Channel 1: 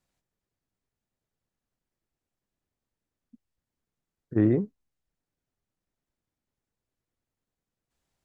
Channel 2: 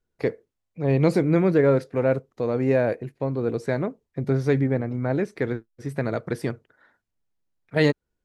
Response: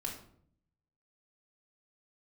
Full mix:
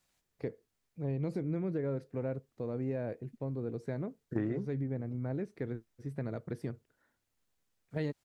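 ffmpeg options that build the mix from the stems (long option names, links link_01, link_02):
-filter_complex "[0:a]tiltshelf=frequency=970:gain=-4,volume=3dB[link_01];[1:a]lowshelf=frequency=440:gain=10.5,adelay=200,volume=-17.5dB[link_02];[link_01][link_02]amix=inputs=2:normalize=0,acompressor=threshold=-31dB:ratio=5"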